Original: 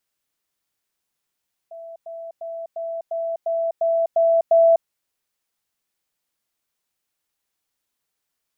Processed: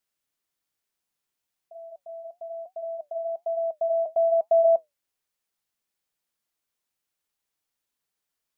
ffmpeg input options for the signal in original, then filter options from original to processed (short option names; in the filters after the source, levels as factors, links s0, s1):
-f lavfi -i "aevalsrc='pow(10,(-34.5+3*floor(t/0.35))/20)*sin(2*PI*664*t)*clip(min(mod(t,0.35),0.25-mod(t,0.35))/0.005,0,1)':d=3.15:s=44100"
-af "flanger=delay=4.5:depth=4.2:regen=-73:speed=1.1:shape=triangular"